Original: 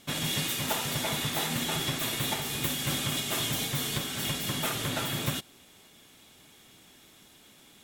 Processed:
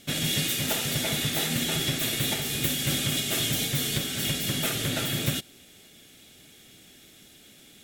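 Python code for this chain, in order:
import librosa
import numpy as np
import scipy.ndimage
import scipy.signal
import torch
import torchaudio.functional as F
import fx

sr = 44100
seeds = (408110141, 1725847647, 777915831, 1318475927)

y = fx.peak_eq(x, sr, hz=1000.0, db=-13.5, octaves=0.62)
y = y * librosa.db_to_amplitude(4.0)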